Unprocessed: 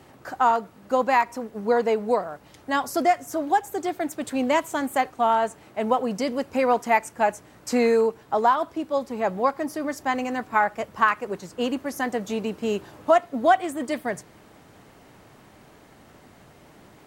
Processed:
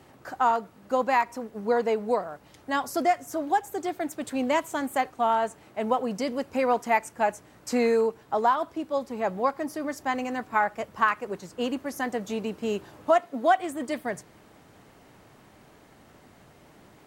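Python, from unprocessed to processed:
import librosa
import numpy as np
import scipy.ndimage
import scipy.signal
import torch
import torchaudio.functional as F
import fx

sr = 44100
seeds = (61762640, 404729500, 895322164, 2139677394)

y = fx.highpass(x, sr, hz=fx.line((13.11, 110.0), (13.58, 300.0)), slope=12, at=(13.11, 13.58), fade=0.02)
y = F.gain(torch.from_numpy(y), -3.0).numpy()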